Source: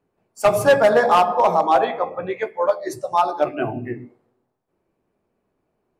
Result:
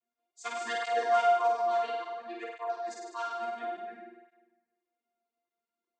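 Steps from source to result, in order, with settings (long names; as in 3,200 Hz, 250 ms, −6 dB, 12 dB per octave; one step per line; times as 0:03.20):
channel vocoder with a chord as carrier bare fifth, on A#3
first difference
flutter between parallel walls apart 8.6 metres, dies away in 1.2 s
through-zero flanger with one copy inverted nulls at 0.58 Hz, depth 6.9 ms
level +4 dB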